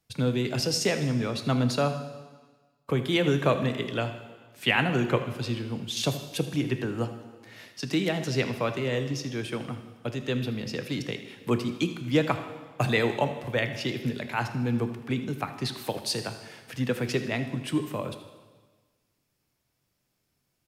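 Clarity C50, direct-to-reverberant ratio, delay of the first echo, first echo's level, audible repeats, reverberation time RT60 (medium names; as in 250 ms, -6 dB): 9.0 dB, 7.0 dB, 79 ms, -15.0 dB, 1, 1.4 s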